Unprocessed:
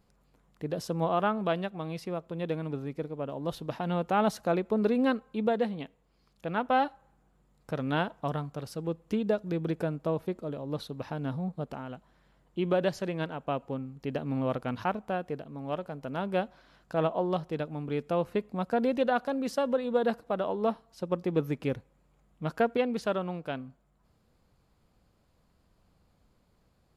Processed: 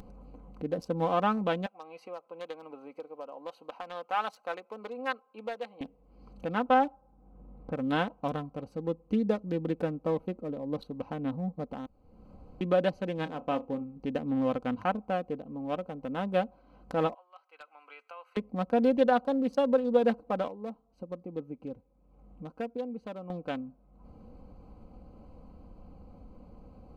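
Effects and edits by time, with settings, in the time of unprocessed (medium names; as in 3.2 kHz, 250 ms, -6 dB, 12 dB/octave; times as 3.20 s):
1.66–5.81 s: high-pass 950 Hz
6.74–7.90 s: distance through air 420 m
11.86–12.61 s: room tone
13.15–14.00 s: flutter echo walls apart 5.6 m, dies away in 0.2 s
17.14–18.37 s: ladder high-pass 1.3 kHz, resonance 40%
20.48–23.30 s: gain -10.5 dB
whole clip: local Wiener filter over 25 samples; upward compressor, threshold -36 dBFS; comb 3.9 ms, depth 53%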